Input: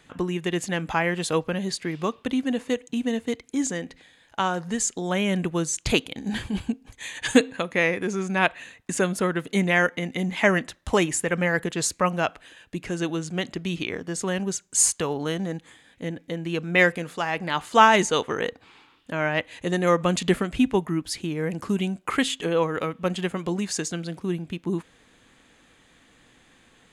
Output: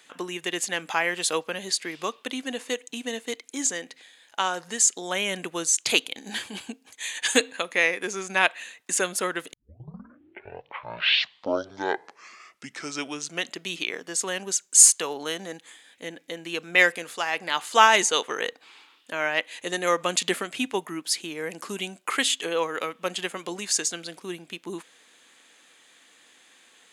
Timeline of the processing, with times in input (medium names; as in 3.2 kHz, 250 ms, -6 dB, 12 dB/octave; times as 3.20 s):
7.80–8.42 s: transient shaper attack +5 dB, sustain -2 dB
9.53 s: tape start 4.03 s
whole clip: high-pass 360 Hz 12 dB/octave; treble shelf 2.2 kHz +10 dB; trim -3 dB